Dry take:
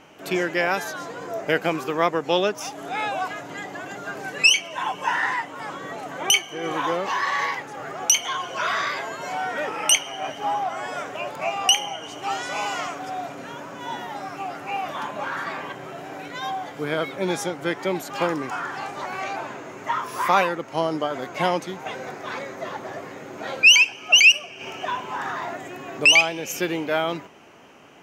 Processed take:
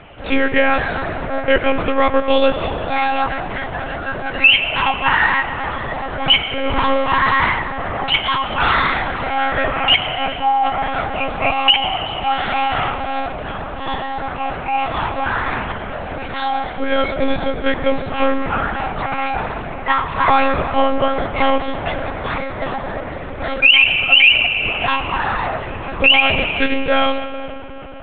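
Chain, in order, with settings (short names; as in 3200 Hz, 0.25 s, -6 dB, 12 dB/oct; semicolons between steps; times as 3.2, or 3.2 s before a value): reverb RT60 4.1 s, pre-delay 50 ms, DRR 9.5 dB; monotone LPC vocoder at 8 kHz 270 Hz; maximiser +10 dB; gain -1 dB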